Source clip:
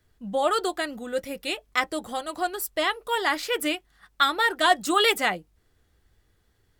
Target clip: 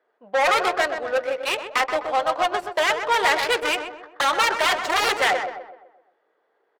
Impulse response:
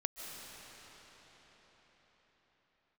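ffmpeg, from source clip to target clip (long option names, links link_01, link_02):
-filter_complex "[0:a]aeval=exprs='0.447*sin(PI/2*6.31*val(0)/0.447)':channel_layout=same,highpass=frequency=500:width=0.5412,highpass=frequency=500:width=1.3066,asplit=2[link_01][link_02];[link_02]adelay=127,lowpass=frequency=3800:poles=1,volume=-6dB,asplit=2[link_03][link_04];[link_04]adelay=127,lowpass=frequency=3800:poles=1,volume=0.49,asplit=2[link_05][link_06];[link_06]adelay=127,lowpass=frequency=3800:poles=1,volume=0.49,asplit=2[link_07][link_08];[link_08]adelay=127,lowpass=frequency=3800:poles=1,volume=0.49,asplit=2[link_09][link_10];[link_10]adelay=127,lowpass=frequency=3800:poles=1,volume=0.49,asplit=2[link_11][link_12];[link_12]adelay=127,lowpass=frequency=3800:poles=1,volume=0.49[link_13];[link_03][link_05][link_07][link_09][link_11][link_13]amix=inputs=6:normalize=0[link_14];[link_01][link_14]amix=inputs=2:normalize=0,adynamicsmooth=sensitivity=0.5:basefreq=1000,volume=-7dB"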